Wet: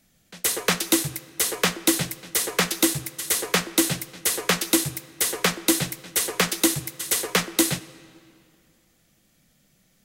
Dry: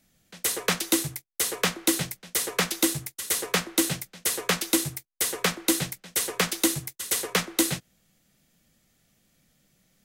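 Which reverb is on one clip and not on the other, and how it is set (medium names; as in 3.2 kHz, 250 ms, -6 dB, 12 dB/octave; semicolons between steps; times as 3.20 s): algorithmic reverb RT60 2.5 s, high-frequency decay 0.8×, pre-delay 5 ms, DRR 17.5 dB; trim +3 dB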